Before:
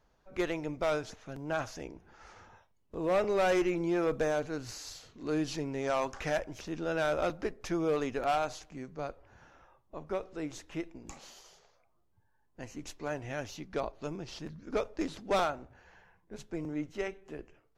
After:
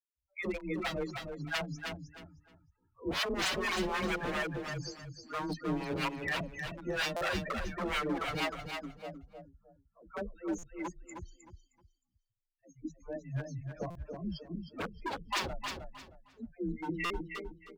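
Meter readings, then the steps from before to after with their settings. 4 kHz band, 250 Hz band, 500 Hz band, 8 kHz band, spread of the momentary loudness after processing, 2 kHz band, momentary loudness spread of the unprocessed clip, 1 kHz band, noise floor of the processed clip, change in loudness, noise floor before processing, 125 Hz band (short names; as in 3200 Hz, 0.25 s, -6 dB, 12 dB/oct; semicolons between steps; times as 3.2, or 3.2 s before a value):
+6.0 dB, -2.5 dB, -7.0 dB, 0.0 dB, 16 LU, +3.0 dB, 16 LU, -2.5 dB, -82 dBFS, -2.5 dB, -71 dBFS, +1.5 dB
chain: per-bin expansion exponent 2; high shelf 7300 Hz -11 dB; in parallel at 0 dB: limiter -30.5 dBFS, peak gain reduction 7 dB; on the sum: dispersion lows, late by 0.126 s, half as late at 350 Hz; loudest bins only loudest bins 16; wavefolder -33.5 dBFS; harmonic tremolo 4.2 Hz, depth 100%, crossover 610 Hz; frequency shift +16 Hz; on a send: feedback echo 0.311 s, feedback 27%, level -6 dB; on the sum: stuck buffer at 7.16/10.58/13.9/17.05, samples 256, times 8; mismatched tape noise reduction decoder only; gain +8.5 dB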